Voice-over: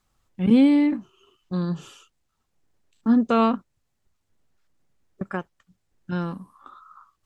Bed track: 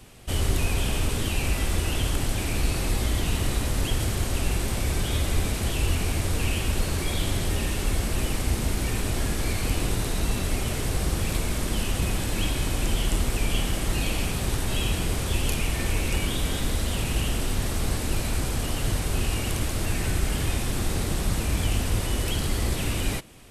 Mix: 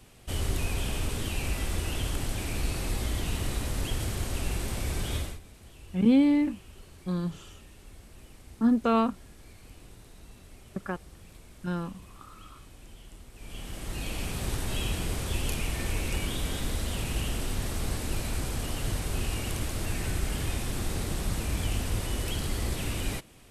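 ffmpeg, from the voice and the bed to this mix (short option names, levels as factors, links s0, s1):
-filter_complex "[0:a]adelay=5550,volume=0.596[s0];[1:a]volume=5.01,afade=t=out:st=5.16:d=0.23:silence=0.112202,afade=t=in:st=13.34:d=1.12:silence=0.105925[s1];[s0][s1]amix=inputs=2:normalize=0"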